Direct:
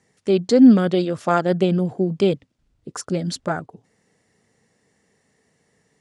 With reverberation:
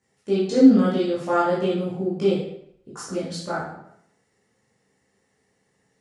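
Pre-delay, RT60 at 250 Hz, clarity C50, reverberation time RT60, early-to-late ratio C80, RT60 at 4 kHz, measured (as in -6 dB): 12 ms, 0.70 s, 1.5 dB, 0.70 s, 5.0 dB, 0.55 s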